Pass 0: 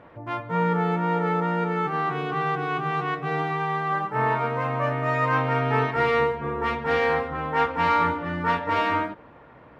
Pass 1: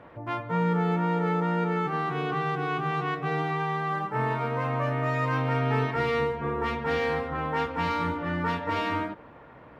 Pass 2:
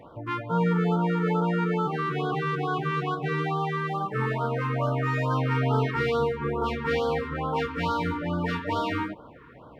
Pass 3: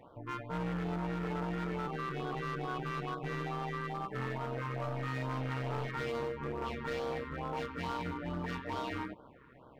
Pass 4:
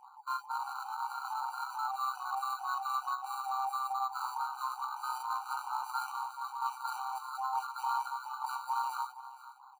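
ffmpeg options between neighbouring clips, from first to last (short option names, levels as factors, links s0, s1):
-filter_complex "[0:a]acrossover=split=380|3000[s0][s1][s2];[s1]acompressor=threshold=0.0398:ratio=6[s3];[s0][s3][s2]amix=inputs=3:normalize=0"
-af "afftfilt=real='re*(1-between(b*sr/1024,620*pow(2200/620,0.5+0.5*sin(2*PI*2.3*pts/sr))/1.41,620*pow(2200/620,0.5+0.5*sin(2*PI*2.3*pts/sr))*1.41))':imag='im*(1-between(b*sr/1024,620*pow(2200/620,0.5+0.5*sin(2*PI*2.3*pts/sr))/1.41,620*pow(2200/620,0.5+0.5*sin(2*PI*2.3*pts/sr))*1.41))':win_size=1024:overlap=0.75,volume=1.26"
-af "asoftclip=type=hard:threshold=0.0596,tremolo=f=130:d=0.621,volume=0.501"
-filter_complex "[0:a]acrossover=split=490|1500[s0][s1][s2];[s2]acrusher=samples=16:mix=1:aa=0.000001[s3];[s0][s1][s3]amix=inputs=3:normalize=0,aecho=1:1:471:0.158,afftfilt=real='re*eq(mod(floor(b*sr/1024/770),2),1)':imag='im*eq(mod(floor(b*sr/1024/770),2),1)':win_size=1024:overlap=0.75,volume=2.51"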